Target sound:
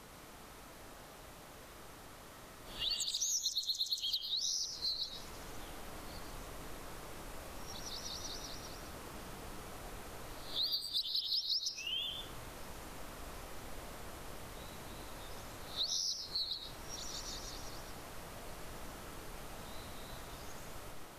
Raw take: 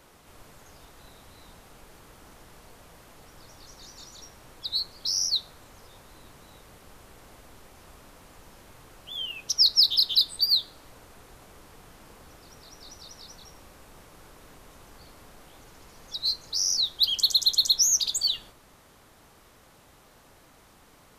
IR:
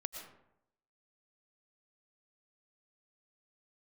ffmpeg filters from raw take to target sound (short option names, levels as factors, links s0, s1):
-filter_complex "[0:a]areverse,acompressor=threshold=0.0126:ratio=5[s0];[1:a]atrim=start_sample=2205[s1];[s0][s1]afir=irnorm=-1:irlink=0,volume=1.58"